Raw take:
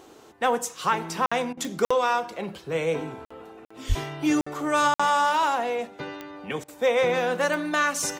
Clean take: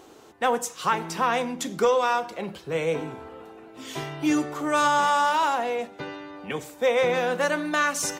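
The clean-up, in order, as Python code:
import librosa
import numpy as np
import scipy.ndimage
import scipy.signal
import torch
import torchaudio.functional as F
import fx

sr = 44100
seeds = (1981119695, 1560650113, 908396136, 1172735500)

y = fx.fix_declick_ar(x, sr, threshold=10.0)
y = fx.fix_deplosive(y, sr, at_s=(3.88,))
y = fx.fix_interpolate(y, sr, at_s=(1.26, 1.85, 3.25, 3.65, 4.41, 4.94), length_ms=55.0)
y = fx.fix_interpolate(y, sr, at_s=(1.53, 6.64), length_ms=41.0)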